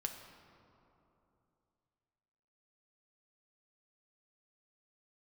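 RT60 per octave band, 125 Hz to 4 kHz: 3.3 s, 3.1 s, 3.0 s, 2.9 s, 2.0 s, 1.4 s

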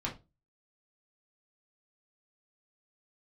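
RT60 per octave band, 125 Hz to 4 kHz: 0.35 s, 0.35 s, 0.30 s, 0.25 s, 0.20 s, 0.20 s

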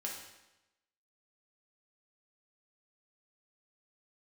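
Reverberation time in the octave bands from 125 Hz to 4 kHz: 1.0 s, 0.95 s, 0.95 s, 0.95 s, 0.95 s, 0.90 s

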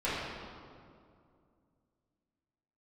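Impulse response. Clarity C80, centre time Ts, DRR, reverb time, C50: 0.0 dB, 127 ms, -12.0 dB, 2.3 s, -2.5 dB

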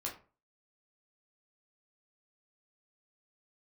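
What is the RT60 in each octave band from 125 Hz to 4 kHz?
0.45 s, 0.40 s, 0.40 s, 0.35 s, 0.30 s, 0.20 s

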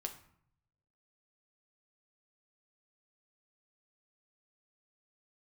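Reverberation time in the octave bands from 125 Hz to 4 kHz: 1.3 s, 0.80 s, 0.60 s, 0.65 s, 0.55 s, 0.40 s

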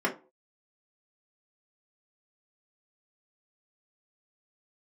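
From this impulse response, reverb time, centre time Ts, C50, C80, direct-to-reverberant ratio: no single decay rate, 13 ms, 13.0 dB, 20.5 dB, -2.0 dB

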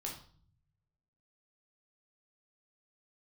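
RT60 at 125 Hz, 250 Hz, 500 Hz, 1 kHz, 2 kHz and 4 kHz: 1.5 s, 0.90 s, 0.50 s, 0.50 s, 0.40 s, 0.45 s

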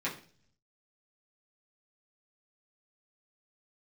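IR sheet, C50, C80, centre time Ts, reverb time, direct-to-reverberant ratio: 10.5 dB, 15.0 dB, 20 ms, 0.45 s, -7.0 dB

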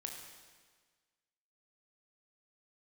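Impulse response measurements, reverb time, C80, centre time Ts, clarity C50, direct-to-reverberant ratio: 1.5 s, 5.0 dB, 53 ms, 3.5 dB, 1.5 dB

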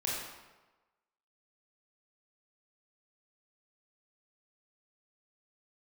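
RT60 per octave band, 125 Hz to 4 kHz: 1.1 s, 1.1 s, 1.2 s, 1.2 s, 1.0 s, 0.85 s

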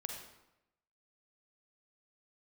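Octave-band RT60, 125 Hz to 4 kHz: 0.95 s, 0.90 s, 0.90 s, 0.90 s, 0.80 s, 0.65 s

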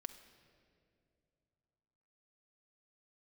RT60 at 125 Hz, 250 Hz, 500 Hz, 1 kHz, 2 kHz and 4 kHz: 3.4 s, 3.1 s, 2.9 s, 2.2 s, 1.9 s, 1.6 s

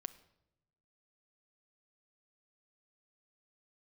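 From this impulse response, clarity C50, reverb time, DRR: 16.0 dB, 0.85 s, 11.0 dB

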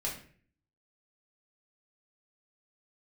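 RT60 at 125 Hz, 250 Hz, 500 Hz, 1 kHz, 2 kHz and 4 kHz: 0.75 s, 0.65 s, 0.55 s, 0.40 s, 0.50 s, 0.35 s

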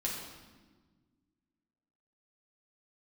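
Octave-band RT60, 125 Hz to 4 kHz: 2.2 s, 2.2 s, 1.5 s, 1.3 s, 1.2 s, 1.1 s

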